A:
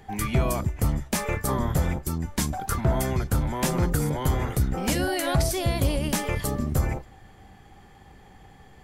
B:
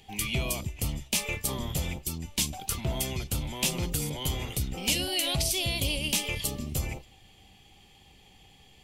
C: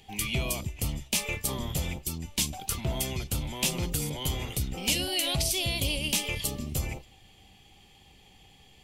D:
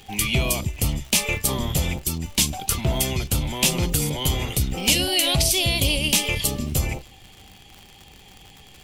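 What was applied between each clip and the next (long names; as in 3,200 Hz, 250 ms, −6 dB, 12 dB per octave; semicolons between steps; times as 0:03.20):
high shelf with overshoot 2,100 Hz +9.5 dB, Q 3; level −8 dB
no processing that can be heard
surface crackle 120 per second −41 dBFS; level +8 dB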